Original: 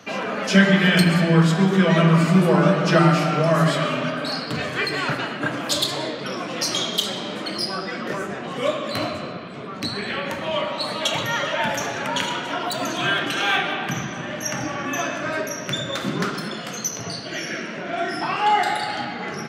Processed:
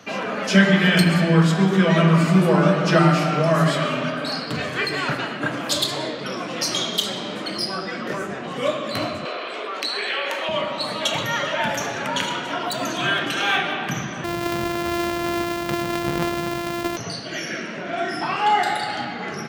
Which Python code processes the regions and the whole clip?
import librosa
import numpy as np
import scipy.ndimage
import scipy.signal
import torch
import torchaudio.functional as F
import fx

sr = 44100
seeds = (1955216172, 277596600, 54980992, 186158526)

y = fx.chain(x, sr, fx.highpass(hz=380.0, slope=24),
    fx.peak_eq(hz=2900.0, db=5.0, octaves=0.89),
    fx.env_flatten(amount_pct=50), at=(9.25, 10.49))
y = fx.chain(y, sr, fx.sample_sort(block=128),
    fx.peak_eq(hz=9000.0, db=-7.5, octaves=1.7),
    fx.env_flatten(amount_pct=50), at=(14.24, 16.97))